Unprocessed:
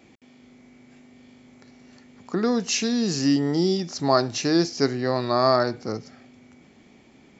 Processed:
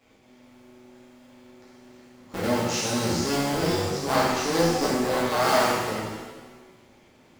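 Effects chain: cycle switcher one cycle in 2, muted; pitch-shifted reverb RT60 1.2 s, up +7 st, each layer -8 dB, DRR -8 dB; trim -8 dB

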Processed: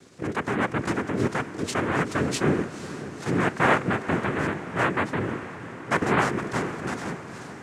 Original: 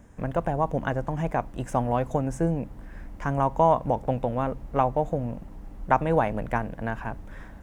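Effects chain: transient shaper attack -4 dB, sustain +2 dB; tone controls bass +4 dB, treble +15 dB; noise-vocoded speech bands 3; on a send: echo that smears into a reverb 490 ms, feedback 59%, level -13 dB

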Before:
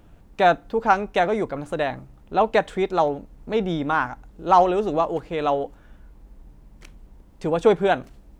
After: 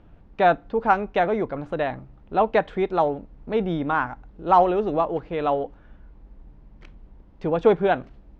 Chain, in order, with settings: distance through air 230 m

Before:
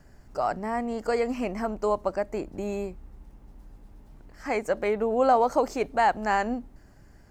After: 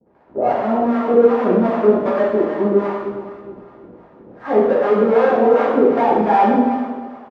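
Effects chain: square wave that keeps the level; expander -41 dBFS; in parallel at -5 dB: sine folder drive 11 dB, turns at -9 dBFS; on the sum: Butterworth band-pass 500 Hz, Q 0.54; on a send: feedback delay 311 ms, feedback 36%, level -10 dB; on the sum: harmonic tremolo 2.6 Hz, depth 100%, crossover 630 Hz; gated-style reverb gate 340 ms falling, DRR -7 dB; trim -2.5 dB

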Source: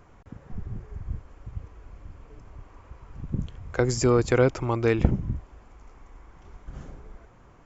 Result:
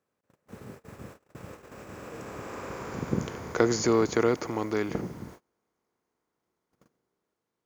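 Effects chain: spectral levelling over time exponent 0.6; Doppler pass-by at 2.90 s, 29 m/s, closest 19 m; word length cut 10-bit, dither none; gate -39 dBFS, range -30 dB; high-pass 190 Hz 12 dB/octave; trim +2 dB

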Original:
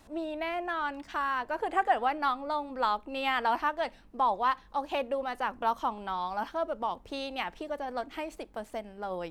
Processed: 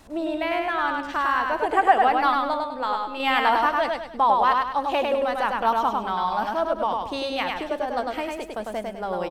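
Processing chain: 2.54–3.20 s: feedback comb 84 Hz, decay 0.43 s, harmonics all, mix 60%; feedback delay 101 ms, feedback 38%, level -3 dB; trim +6.5 dB

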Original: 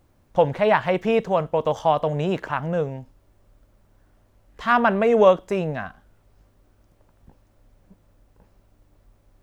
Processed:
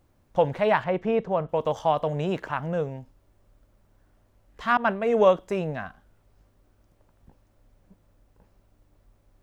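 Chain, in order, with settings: 0.84–1.49 s: low-pass 1.5 kHz 6 dB/octave; 4.77–5.30 s: expander -15 dBFS; trim -3.5 dB

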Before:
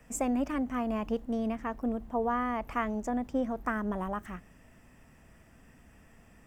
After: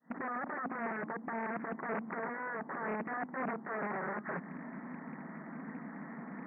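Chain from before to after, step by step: fade-in on the opening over 0.62 s; ten-band graphic EQ 250 Hz +8 dB, 500 Hz -4 dB, 1 kHz +7 dB; compression 5:1, threshold -40 dBFS, peak gain reduction 17.5 dB; integer overflow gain 41.5 dB; FFT band-pass 140–2000 Hz; loudspeaker Doppler distortion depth 0.3 ms; trim +11 dB

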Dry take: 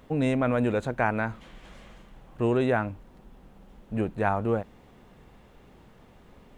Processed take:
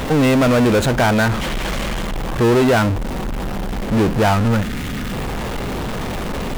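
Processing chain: time-frequency box 4.34–5.13 s, 320–1200 Hz -13 dB; power-law waveshaper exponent 0.35; trim +2.5 dB

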